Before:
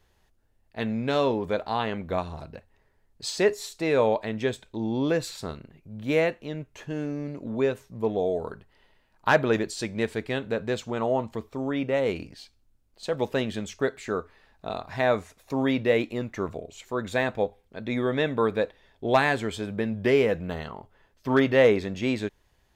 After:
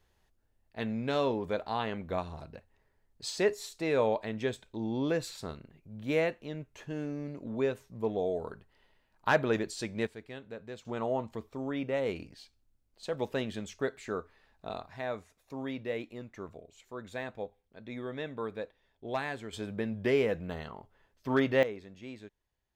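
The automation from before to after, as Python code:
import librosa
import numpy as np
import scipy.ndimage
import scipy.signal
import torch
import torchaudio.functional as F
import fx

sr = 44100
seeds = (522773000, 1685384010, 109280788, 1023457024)

y = fx.gain(x, sr, db=fx.steps((0.0, -5.5), (10.07, -15.5), (10.85, -6.5), (14.87, -13.0), (19.53, -6.0), (21.63, -18.5)))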